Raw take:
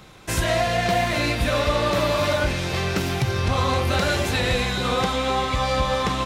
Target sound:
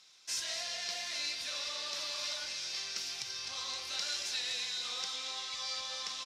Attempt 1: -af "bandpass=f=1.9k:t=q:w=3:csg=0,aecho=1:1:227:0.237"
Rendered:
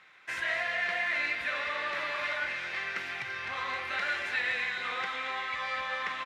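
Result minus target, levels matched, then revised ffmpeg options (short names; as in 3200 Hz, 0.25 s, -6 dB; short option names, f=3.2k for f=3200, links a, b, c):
2000 Hz band +10.0 dB
-af "bandpass=f=5.3k:t=q:w=3:csg=0,aecho=1:1:227:0.237"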